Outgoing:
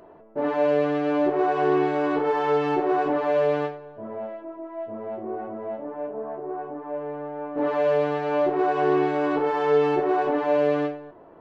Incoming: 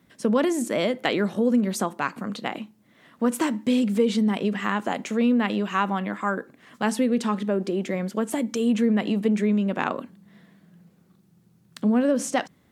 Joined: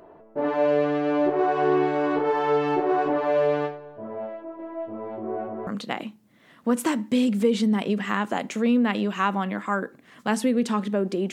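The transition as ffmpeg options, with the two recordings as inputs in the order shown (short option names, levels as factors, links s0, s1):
-filter_complex "[0:a]asplit=3[s0][s1][s2];[s0]afade=t=out:st=4.58:d=0.02[s3];[s1]aecho=1:1:281:0.562,afade=t=in:st=4.58:d=0.02,afade=t=out:st=5.67:d=0.02[s4];[s2]afade=t=in:st=5.67:d=0.02[s5];[s3][s4][s5]amix=inputs=3:normalize=0,apad=whole_dur=11.32,atrim=end=11.32,atrim=end=5.672[s6];[1:a]atrim=start=2.218:end=7.87[s7];[s6][s7]acrossfade=d=0.004:c1=hsin:c2=hsin"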